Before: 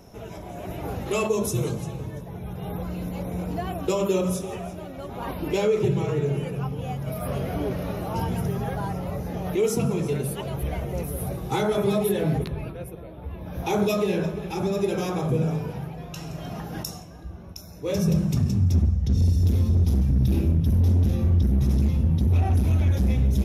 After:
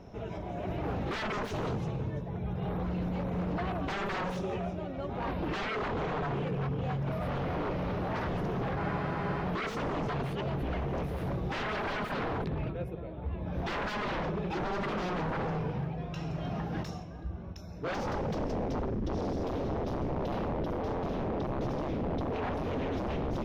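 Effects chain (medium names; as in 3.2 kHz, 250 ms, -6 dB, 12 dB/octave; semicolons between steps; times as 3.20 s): treble shelf 11 kHz +9.5 dB; wavefolder -27 dBFS; distance through air 220 m; spectral freeze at 8.81 s, 0.63 s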